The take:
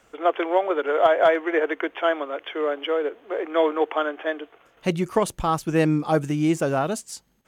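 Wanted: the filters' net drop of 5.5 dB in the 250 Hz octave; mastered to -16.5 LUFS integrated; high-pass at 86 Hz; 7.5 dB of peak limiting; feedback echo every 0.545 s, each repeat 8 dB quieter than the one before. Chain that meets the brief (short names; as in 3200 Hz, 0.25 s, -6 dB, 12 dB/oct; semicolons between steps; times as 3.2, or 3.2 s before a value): HPF 86 Hz; bell 250 Hz -8.5 dB; limiter -14 dBFS; feedback echo 0.545 s, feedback 40%, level -8 dB; gain +10 dB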